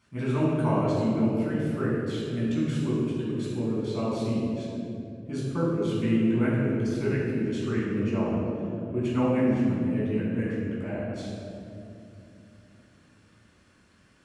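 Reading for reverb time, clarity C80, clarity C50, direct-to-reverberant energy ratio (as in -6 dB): 2.7 s, 0.0 dB, -2.0 dB, -8.0 dB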